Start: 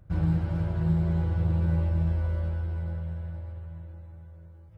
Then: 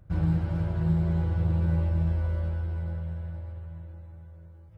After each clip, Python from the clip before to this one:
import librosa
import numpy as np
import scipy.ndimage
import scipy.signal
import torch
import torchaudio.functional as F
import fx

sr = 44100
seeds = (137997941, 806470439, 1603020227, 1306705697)

y = x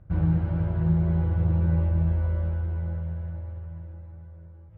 y = fx.air_absorb(x, sr, metres=360.0)
y = F.gain(torch.from_numpy(y), 2.5).numpy()